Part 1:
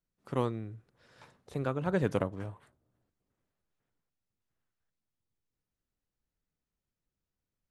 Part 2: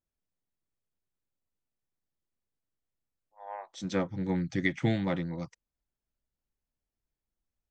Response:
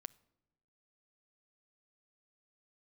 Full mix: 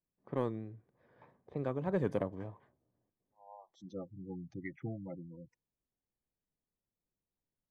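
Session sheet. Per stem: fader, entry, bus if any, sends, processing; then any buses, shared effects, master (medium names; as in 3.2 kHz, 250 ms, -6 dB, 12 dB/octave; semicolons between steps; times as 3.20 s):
-1.0 dB, 0.00 s, no send, level-controlled noise filter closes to 1.9 kHz, open at -27 dBFS; comb of notches 1.4 kHz; vibrato 3.3 Hz 52 cents
-11.0 dB, 0.00 s, no send, spectral gate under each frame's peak -15 dB strong; peaking EQ 200 Hz -3.5 dB 1.1 oct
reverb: none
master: treble shelf 2 kHz -11 dB; saturation -19 dBFS, distortion -21 dB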